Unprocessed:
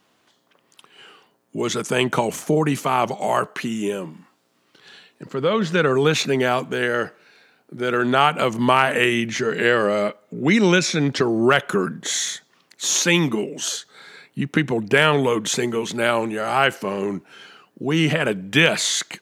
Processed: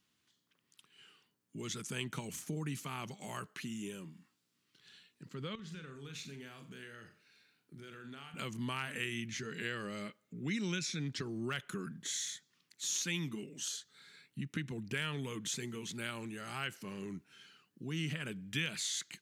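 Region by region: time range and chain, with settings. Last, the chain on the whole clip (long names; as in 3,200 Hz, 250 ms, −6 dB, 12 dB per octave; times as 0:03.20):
0:05.55–0:08.34: downward compressor 3 to 1, threshold −33 dBFS + flutter between parallel walls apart 7.4 metres, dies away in 0.33 s
whole clip: guitar amp tone stack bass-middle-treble 6-0-2; downward compressor 1.5 to 1, threshold −44 dBFS; level +3.5 dB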